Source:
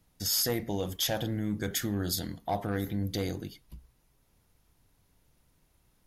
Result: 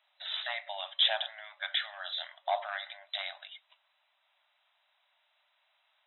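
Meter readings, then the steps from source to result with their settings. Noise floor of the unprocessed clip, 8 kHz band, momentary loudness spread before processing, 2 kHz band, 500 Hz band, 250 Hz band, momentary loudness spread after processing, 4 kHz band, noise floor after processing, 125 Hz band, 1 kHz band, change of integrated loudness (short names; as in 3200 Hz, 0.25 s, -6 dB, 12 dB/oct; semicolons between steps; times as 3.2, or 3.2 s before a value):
-70 dBFS, under -40 dB, 7 LU, +5.0 dB, -6.0 dB, under -40 dB, 13 LU, +4.0 dB, -75 dBFS, under -40 dB, +1.5 dB, -2.0 dB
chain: FFT band-pass 570–4000 Hz; high shelf 2000 Hz +11 dB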